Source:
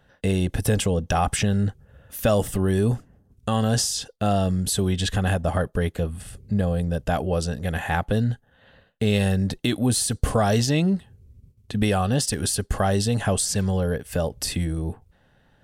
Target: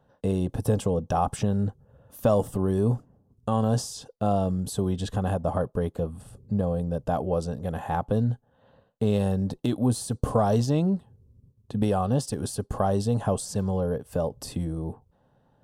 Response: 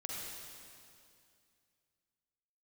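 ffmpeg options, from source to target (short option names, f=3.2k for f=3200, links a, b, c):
-af "aeval=exprs='0.473*(cos(1*acos(clip(val(0)/0.473,-1,1)))-cos(1*PI/2))+0.0596*(cos(3*acos(clip(val(0)/0.473,-1,1)))-cos(3*PI/2))+0.0075*(cos(5*acos(clip(val(0)/0.473,-1,1)))-cos(5*PI/2))':c=same,equalizer=f=125:t=o:w=1:g=8,equalizer=f=250:t=o:w=1:g=6,equalizer=f=500:t=o:w=1:g=7,equalizer=f=1k:t=o:w=1:g=11,equalizer=f=2k:t=o:w=1:g=-9,volume=-8dB"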